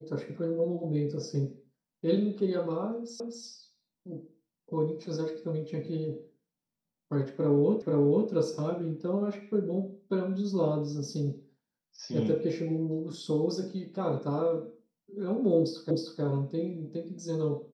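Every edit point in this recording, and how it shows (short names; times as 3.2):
3.2 repeat of the last 0.25 s
7.82 repeat of the last 0.48 s
15.91 repeat of the last 0.31 s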